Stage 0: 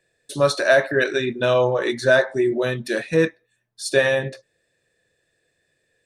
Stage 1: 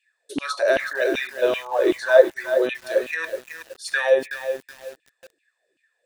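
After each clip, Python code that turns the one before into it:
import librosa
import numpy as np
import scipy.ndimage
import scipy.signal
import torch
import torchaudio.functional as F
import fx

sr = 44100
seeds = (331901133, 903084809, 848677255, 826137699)

y = fx.filter_lfo_highpass(x, sr, shape='saw_down', hz=2.6, low_hz=270.0, high_hz=2900.0, q=7.0)
y = fx.echo_crushed(y, sr, ms=374, feedback_pct=35, bits=5, wet_db=-8.5)
y = y * librosa.db_to_amplitude(-7.0)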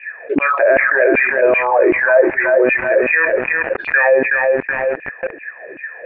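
y = scipy.signal.sosfilt(scipy.signal.cheby1(6, 3, 2500.0, 'lowpass', fs=sr, output='sos'), x)
y = fx.env_flatten(y, sr, amount_pct=70)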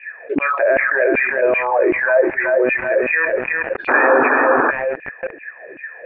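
y = fx.spec_paint(x, sr, seeds[0], shape='noise', start_s=3.88, length_s=0.83, low_hz=240.0, high_hz=1800.0, level_db=-13.0)
y = y * librosa.db_to_amplitude(-3.0)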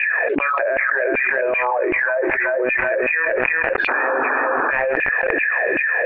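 y = fx.peak_eq(x, sr, hz=190.0, db=-7.5, octaves=2.7)
y = fx.env_flatten(y, sr, amount_pct=100)
y = y * librosa.db_to_amplitude(-7.0)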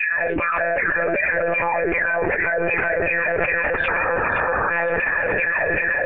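y = fx.echo_feedback(x, sr, ms=521, feedback_pct=33, wet_db=-10)
y = fx.lpc_monotone(y, sr, seeds[1], pitch_hz=170.0, order=16)
y = y * librosa.db_to_amplitude(-2.0)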